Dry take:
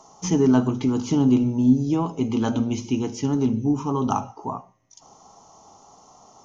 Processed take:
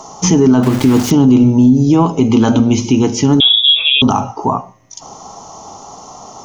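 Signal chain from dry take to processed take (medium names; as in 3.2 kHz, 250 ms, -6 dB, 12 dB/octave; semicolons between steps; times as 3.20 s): in parallel at 0 dB: compression, threshold -30 dBFS, peak gain reduction 17 dB; 0.63–1.11 s: on the sum: small samples zeroed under -28.5 dBFS; 3.40–4.02 s: frequency inversion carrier 3.6 kHz; loudness maximiser +12 dB; trim -1 dB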